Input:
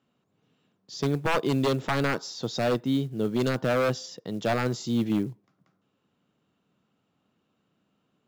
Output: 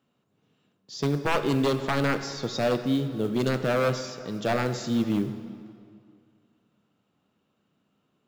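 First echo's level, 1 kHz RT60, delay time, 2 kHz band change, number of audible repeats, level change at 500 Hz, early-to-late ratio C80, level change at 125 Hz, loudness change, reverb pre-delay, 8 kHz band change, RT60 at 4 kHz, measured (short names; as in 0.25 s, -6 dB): none, 2.2 s, none, +0.5 dB, none, +0.5 dB, 11.0 dB, +0.5 dB, +0.5 dB, 14 ms, +0.5 dB, 1.7 s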